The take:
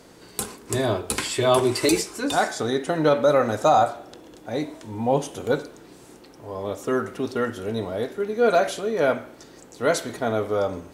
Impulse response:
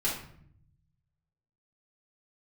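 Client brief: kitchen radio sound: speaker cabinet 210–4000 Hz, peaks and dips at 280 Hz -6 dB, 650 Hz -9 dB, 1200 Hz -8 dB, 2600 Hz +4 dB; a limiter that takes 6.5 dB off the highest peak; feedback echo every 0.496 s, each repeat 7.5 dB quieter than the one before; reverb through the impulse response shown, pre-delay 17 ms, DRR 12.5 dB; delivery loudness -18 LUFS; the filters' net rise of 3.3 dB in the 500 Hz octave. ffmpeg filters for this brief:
-filter_complex "[0:a]equalizer=f=500:t=o:g=8,alimiter=limit=-9dB:level=0:latency=1,aecho=1:1:496|992|1488|1984|2480:0.422|0.177|0.0744|0.0312|0.0131,asplit=2[a][b];[1:a]atrim=start_sample=2205,adelay=17[c];[b][c]afir=irnorm=-1:irlink=0,volume=-20dB[d];[a][d]amix=inputs=2:normalize=0,highpass=210,equalizer=f=280:t=q:w=4:g=-6,equalizer=f=650:t=q:w=4:g=-9,equalizer=f=1.2k:t=q:w=4:g=-8,equalizer=f=2.6k:t=q:w=4:g=4,lowpass=f=4k:w=0.5412,lowpass=f=4k:w=1.3066,volume=5.5dB"

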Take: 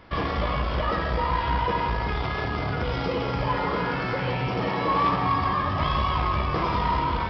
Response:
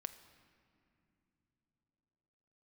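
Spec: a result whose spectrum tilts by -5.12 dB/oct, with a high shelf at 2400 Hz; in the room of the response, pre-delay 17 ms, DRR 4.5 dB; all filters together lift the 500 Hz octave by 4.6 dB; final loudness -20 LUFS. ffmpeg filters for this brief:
-filter_complex "[0:a]equalizer=f=500:t=o:g=5.5,highshelf=f=2.4k:g=-3,asplit=2[a][b];[1:a]atrim=start_sample=2205,adelay=17[c];[b][c]afir=irnorm=-1:irlink=0,volume=-1.5dB[d];[a][d]amix=inputs=2:normalize=0,volume=3dB"

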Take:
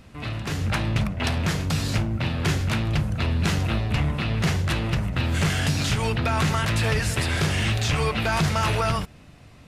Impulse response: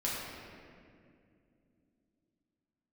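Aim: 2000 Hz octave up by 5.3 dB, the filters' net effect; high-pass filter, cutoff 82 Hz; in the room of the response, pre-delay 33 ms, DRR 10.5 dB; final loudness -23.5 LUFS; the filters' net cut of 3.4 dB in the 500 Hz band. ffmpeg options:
-filter_complex "[0:a]highpass=82,equalizer=f=500:t=o:g=-5,equalizer=f=2k:t=o:g=7,asplit=2[a][b];[1:a]atrim=start_sample=2205,adelay=33[c];[b][c]afir=irnorm=-1:irlink=0,volume=-16.5dB[d];[a][d]amix=inputs=2:normalize=0,volume=-0.5dB"

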